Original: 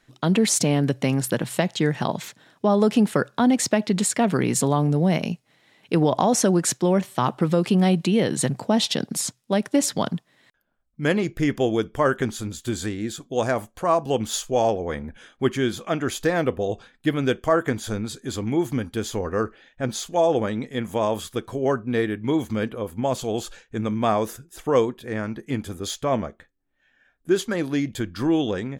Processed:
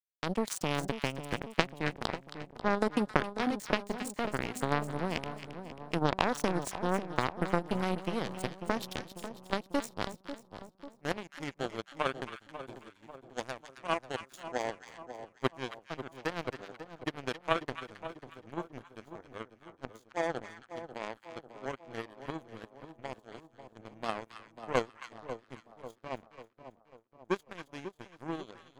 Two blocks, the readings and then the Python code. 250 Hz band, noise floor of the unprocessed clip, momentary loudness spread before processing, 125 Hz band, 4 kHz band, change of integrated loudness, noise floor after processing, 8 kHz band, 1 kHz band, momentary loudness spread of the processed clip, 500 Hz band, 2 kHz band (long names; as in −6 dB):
−15.5 dB, −66 dBFS, 10 LU, −15.5 dB, −11.0 dB, −12.5 dB, −66 dBFS, −19.5 dB, −9.0 dB, 17 LU, −13.5 dB, −7.0 dB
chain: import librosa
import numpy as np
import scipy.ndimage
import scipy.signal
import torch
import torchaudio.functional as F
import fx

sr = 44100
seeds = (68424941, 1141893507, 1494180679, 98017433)

y = fx.power_curve(x, sr, exponent=3.0)
y = fx.echo_split(y, sr, split_hz=1100.0, low_ms=544, high_ms=270, feedback_pct=52, wet_db=-10.5)
y = y * 10.0 ** (3.0 / 20.0)